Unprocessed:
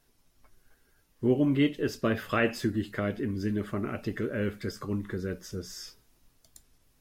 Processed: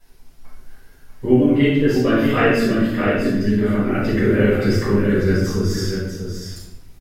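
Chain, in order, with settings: 1.24–3.91 flange 1.1 Hz, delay 3.2 ms, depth 1.8 ms, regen +53%; echo 0.642 s -6.5 dB; shoebox room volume 290 m³, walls mixed, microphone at 7.1 m; gain -2 dB

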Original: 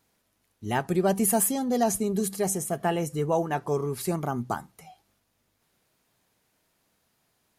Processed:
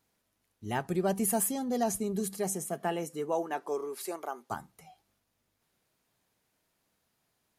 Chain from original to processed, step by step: 2.37–4.5 HPF 130 Hz -> 450 Hz 24 dB/oct; gain -5.5 dB

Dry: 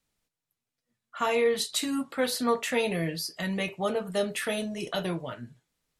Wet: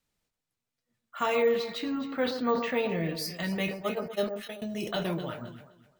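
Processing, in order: 1.42–3.15 air absorption 220 m; 3.77–4.62 gate -26 dBFS, range -30 dB; echo with dull and thin repeats by turns 0.128 s, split 1400 Hz, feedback 51%, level -8 dB; careless resampling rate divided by 2×, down filtered, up hold; sustainer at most 89 dB/s; gain -1 dB

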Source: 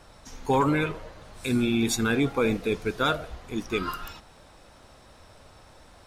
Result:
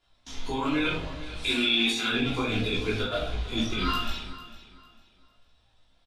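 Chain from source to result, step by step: rattling part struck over -27 dBFS, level -28 dBFS; 1.46–2.11 HPF 440 Hz 12 dB/oct; gate with hold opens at -38 dBFS; LPF 11000 Hz 12 dB/oct; bell 3400 Hz +14.5 dB 0.94 oct; negative-ratio compressor -24 dBFS, ratio -0.5; chorus voices 4, 0.78 Hz, delay 18 ms, depth 2.2 ms; feedback echo 0.45 s, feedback 28%, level -16 dB; shoebox room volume 370 m³, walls furnished, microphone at 3.1 m; gain -4 dB

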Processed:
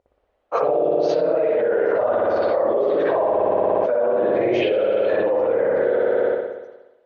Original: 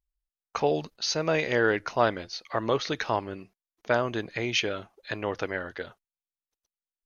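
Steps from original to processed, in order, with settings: phase scrambler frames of 50 ms; band-pass 540 Hz, Q 3.4; spring tank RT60 1.1 s, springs 59 ms, chirp 30 ms, DRR -9.5 dB; fast leveller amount 100%; gain -4 dB

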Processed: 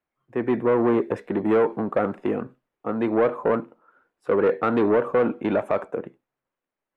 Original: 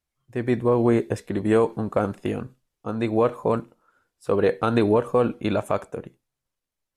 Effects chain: soft clip -19.5 dBFS, distortion -10 dB; three-band isolator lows -17 dB, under 190 Hz, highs -22 dB, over 2400 Hz; gain +5.5 dB

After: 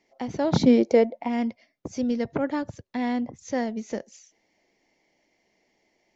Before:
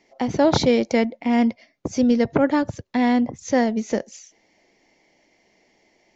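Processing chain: 0.51–1.27 bell 170 Hz -> 880 Hz +13.5 dB 1.1 oct; gain -8 dB

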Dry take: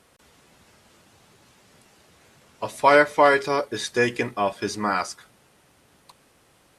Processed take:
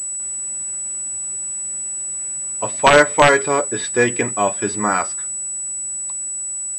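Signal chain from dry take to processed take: wrapped overs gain 6.5 dB; pulse-width modulation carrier 7900 Hz; gain +5 dB

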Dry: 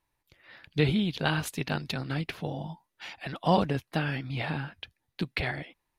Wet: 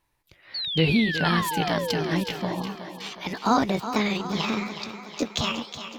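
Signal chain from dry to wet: gliding pitch shift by +8.5 st starting unshifted; in parallel at 0 dB: limiter -20 dBFS, peak gain reduction 8 dB; on the sum: painted sound fall, 0.54–2.21, 290–4600 Hz -30 dBFS; thinning echo 0.367 s, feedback 60%, high-pass 200 Hz, level -10 dB

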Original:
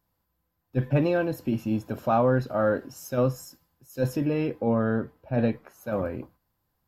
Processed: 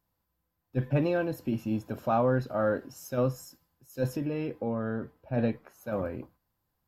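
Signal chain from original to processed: 4.06–5.02 compressor 3:1, threshold -25 dBFS, peak gain reduction 4.5 dB; gain -3.5 dB

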